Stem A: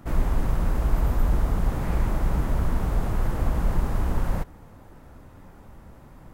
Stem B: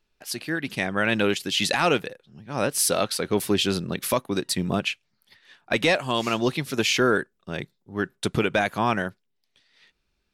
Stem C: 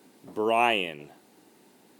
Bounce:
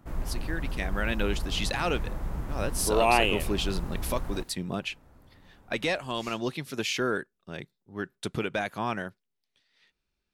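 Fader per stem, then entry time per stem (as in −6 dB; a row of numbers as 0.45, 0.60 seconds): −9.5, −7.5, +0.5 decibels; 0.00, 0.00, 2.50 seconds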